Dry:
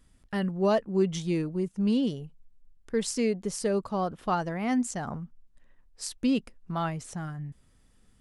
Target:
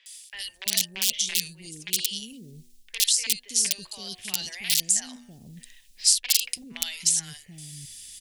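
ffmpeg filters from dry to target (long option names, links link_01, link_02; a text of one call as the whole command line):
ffmpeg -i in.wav -filter_complex "[0:a]bandreject=frequency=121.4:width_type=h:width=4,bandreject=frequency=242.8:width_type=h:width=4,bandreject=frequency=364.2:width_type=h:width=4,bandreject=frequency=485.6:width_type=h:width=4,bandreject=frequency=607:width_type=h:width=4,bandreject=frequency=728.4:width_type=h:width=4,bandreject=frequency=849.8:width_type=h:width=4,bandreject=frequency=971.2:width_type=h:width=4,bandreject=frequency=1092.6:width_type=h:width=4,bandreject=frequency=1214:width_type=h:width=4,bandreject=frequency=1335.4:width_type=h:width=4,bandreject=frequency=1456.8:width_type=h:width=4,bandreject=frequency=1578.2:width_type=h:width=4,bandreject=frequency=1699.6:width_type=h:width=4,bandreject=frequency=1821:width_type=h:width=4,acrossover=split=240|2400[link_01][link_02][link_03];[link_01]acompressor=threshold=-31dB:ratio=4[link_04];[link_02]acompressor=threshold=-33dB:ratio=4[link_05];[link_03]acompressor=threshold=-45dB:ratio=4[link_06];[link_04][link_05][link_06]amix=inputs=3:normalize=0,aeval=exprs='(mod(13.3*val(0)+1,2)-1)/13.3':channel_layout=same,areverse,acompressor=threshold=-42dB:ratio=6,areverse,aexciter=amount=15.9:drive=9:freq=2100,acrossover=split=520|2600[link_07][link_08][link_09];[link_09]adelay=60[link_10];[link_07]adelay=330[link_11];[link_11][link_08][link_10]amix=inputs=3:normalize=0,volume=-1dB" out.wav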